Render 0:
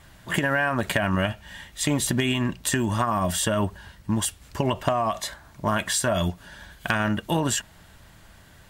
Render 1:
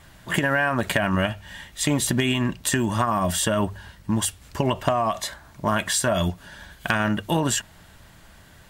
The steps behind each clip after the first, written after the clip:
mains-hum notches 50/100 Hz
level +1.5 dB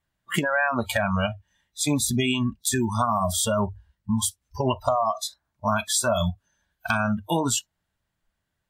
noise reduction from a noise print of the clip's start 30 dB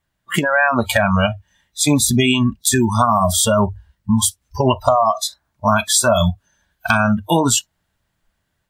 automatic gain control gain up to 3.5 dB
level +5 dB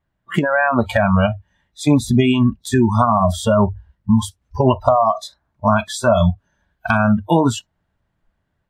low-pass filter 1,100 Hz 6 dB per octave
level +2 dB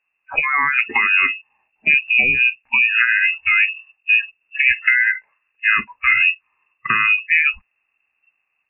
voice inversion scrambler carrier 2,700 Hz
level −1.5 dB

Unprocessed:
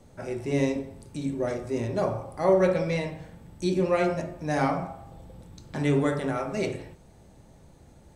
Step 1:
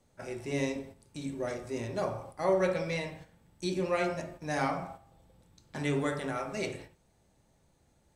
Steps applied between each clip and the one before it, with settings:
noise gate −40 dBFS, range −8 dB
tilt shelving filter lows −3.5 dB, about 920 Hz
level −4.5 dB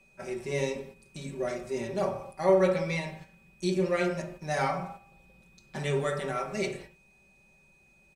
comb filter 5.2 ms, depth 83%
steady tone 2,500 Hz −61 dBFS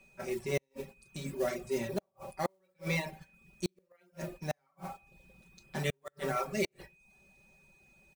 noise that follows the level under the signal 19 dB
gate with flip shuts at −19 dBFS, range −37 dB
reverb reduction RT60 0.55 s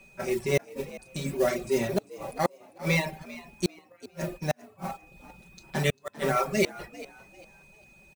echo with shifted repeats 397 ms, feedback 31%, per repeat +73 Hz, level −18 dB
level +7.5 dB

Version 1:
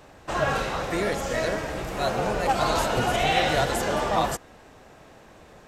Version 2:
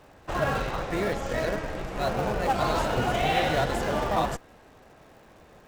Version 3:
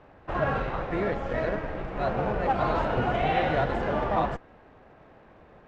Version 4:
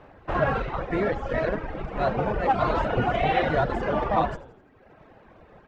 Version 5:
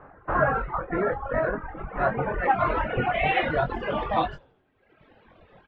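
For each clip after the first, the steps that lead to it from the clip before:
low-pass filter 3,800 Hz 6 dB per octave; surface crackle 400 per second −49 dBFS; in parallel at −7 dB: comparator with hysteresis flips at −23 dBFS; on the sum: level −3 dB
low-pass filter 2,300 Hz 12 dB per octave
reverb reduction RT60 1 s; echo with shifted repeats 84 ms, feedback 53%, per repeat −84 Hz, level −17 dB; level +4 dB
reverb reduction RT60 1.5 s; low-pass filter sweep 1,400 Hz → 3,500 Hz, 0:01.46–0:04.16; double-tracking delay 22 ms −7 dB; level −1.5 dB

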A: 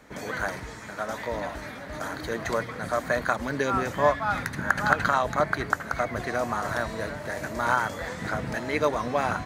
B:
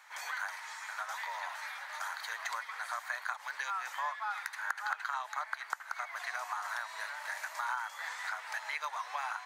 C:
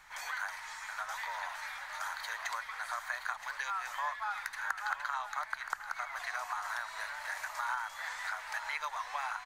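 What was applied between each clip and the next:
Chebyshev high-pass filter 860 Hz, order 4; downward compressor 3 to 1, threshold −36 dBFS, peak gain reduction 15 dB
background noise brown −71 dBFS; single-tap delay 972 ms −12 dB

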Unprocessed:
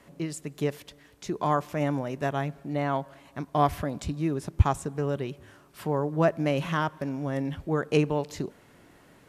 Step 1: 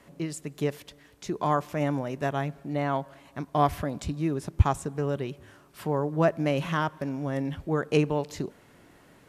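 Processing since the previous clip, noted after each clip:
no processing that can be heard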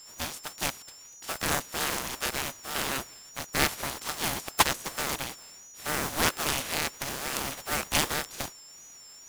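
compressing power law on the bin magnitudes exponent 0.29
steady tone 6,300 Hz −44 dBFS
ring modulator whose carrier an LFO sweeps 730 Hz, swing 45%, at 2.2 Hz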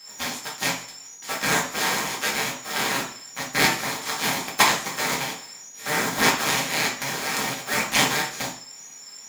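convolution reverb RT60 0.50 s, pre-delay 3 ms, DRR −3 dB
level −1.5 dB

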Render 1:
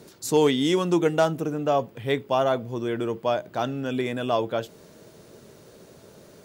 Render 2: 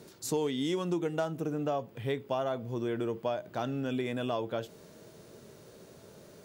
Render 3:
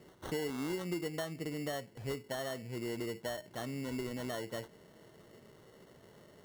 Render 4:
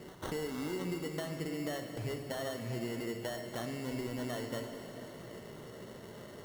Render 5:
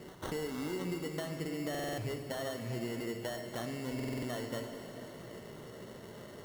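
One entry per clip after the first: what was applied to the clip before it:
harmonic and percussive parts rebalanced harmonic +4 dB; downward compressor 4 to 1, threshold −23 dBFS, peak gain reduction 10 dB; level −6 dB
dynamic equaliser 1,100 Hz, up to −5 dB, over −48 dBFS, Q 1.2; decimation without filtering 18×; level −5.5 dB
downward compressor 4 to 1, threshold −46 dBFS, peak gain reduction 11.5 dB; on a send at −4 dB: convolution reverb RT60 3.7 s, pre-delay 4 ms; on the sum: level +8 dB
buffer that repeats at 0:01.70/0:03.95, samples 2,048, times 5

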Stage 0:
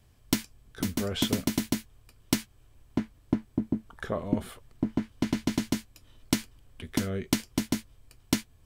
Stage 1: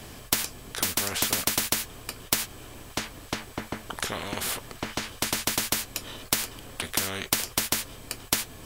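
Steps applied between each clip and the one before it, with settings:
every bin compressed towards the loudest bin 4 to 1
level +7 dB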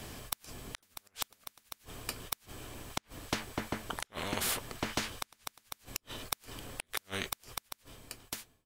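fade-out on the ending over 1.44 s
gate with flip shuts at −14 dBFS, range −40 dB
level −2.5 dB

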